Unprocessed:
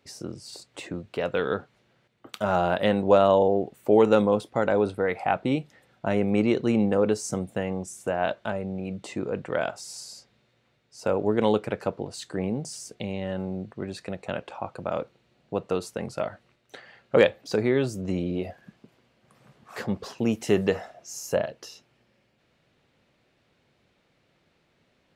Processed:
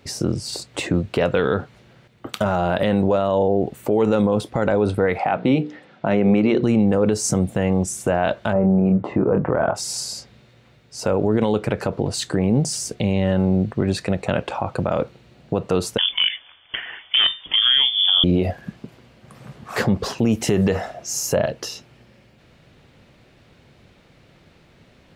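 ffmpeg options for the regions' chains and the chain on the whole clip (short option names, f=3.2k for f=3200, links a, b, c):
-filter_complex "[0:a]asettb=1/sr,asplit=3[a][b][c];[a]atrim=end=5.184[d];[b]atrim=start=5.18:end=6.63,asetpts=PTS-STARTPTS,afade=t=in:d=0.004:c=qsin,afade=t=out:st=1.446:d=0.004:c=qsin,highpass=160,lowpass=4.2k,bandreject=f=60:t=h:w=6,bandreject=f=120:t=h:w=6,bandreject=f=180:t=h:w=6,bandreject=f=240:t=h:w=6,bandreject=f=300:t=h:w=6,bandreject=f=360:t=h:w=6,bandreject=f=420:t=h:w=6,bandreject=f=480:t=h:w=6[e];[c]atrim=start=6.626[f];[d][e]acrossfade=d=0.004:c1=hsin:c2=qsin[g];[g][f]acrossfade=d=0.004:c1=qsin:c2=hsin,asettb=1/sr,asplit=3[h][i][j];[h]atrim=end=8.534[k];[i]atrim=start=8.53:end=9.75,asetpts=PTS-STARTPTS,afade=t=in:d=0.004:c=qsin,afade=t=out:st=1.216:d=0.004:c=qsin,lowpass=f=1.1k:t=q:w=1.5,asplit=2[l][m];[m]adelay=26,volume=-6dB[n];[l][n]amix=inputs=2:normalize=0,atrim=end_sample=53802[o];[j]atrim=start=9.746[p];[k][o]acrossfade=d=0.004:c1=hsin:c2=qsin[q];[q][p]acrossfade=d=0.004:c1=qsin:c2=hsin,asettb=1/sr,asplit=3[r][s][t];[r]atrim=end=15.984[u];[s]atrim=start=15.98:end=18.24,asetpts=PTS-STARTPTS,afade=t=in:d=0.004:c=qsin,afade=t=out:st=2.256:d=0.004:c=qsin,equalizer=f=770:t=o:w=3:g=6,aeval=exprs='clip(val(0),-1,0.237)':c=same,lowpass=f=3.1k:t=q:w=0.5098,lowpass=f=3.1k:t=q:w=0.6013,lowpass=f=3.1k:t=q:w=0.9,lowpass=f=3.1k:t=q:w=2.563,afreqshift=-3600[v];[t]atrim=start=18.236[w];[u][v]acrossfade=d=0.004:c1=hsin:c2=qsin[x];[x][w]acrossfade=d=0.004:c1=qsin:c2=hsin,lowshelf=f=160:g=9,acompressor=threshold=-25dB:ratio=2,alimiter=level_in=20dB:limit=-1dB:release=50:level=0:latency=1,volume=-7.5dB"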